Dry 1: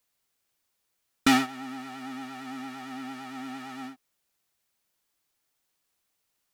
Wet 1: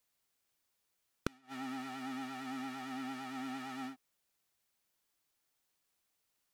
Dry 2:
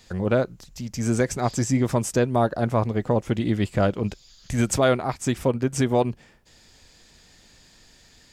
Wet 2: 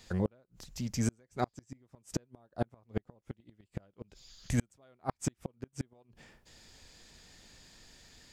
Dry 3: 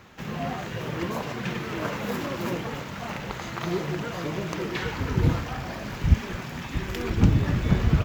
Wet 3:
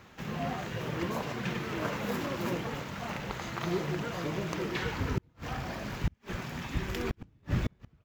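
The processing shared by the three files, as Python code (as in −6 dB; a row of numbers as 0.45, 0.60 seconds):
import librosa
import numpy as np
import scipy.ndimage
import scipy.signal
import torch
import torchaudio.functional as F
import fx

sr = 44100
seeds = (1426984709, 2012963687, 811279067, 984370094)

y = fx.gate_flip(x, sr, shuts_db=-14.0, range_db=-39)
y = y * librosa.db_to_amplitude(-3.5)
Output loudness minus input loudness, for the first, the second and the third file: −12.0, −14.5, −7.0 LU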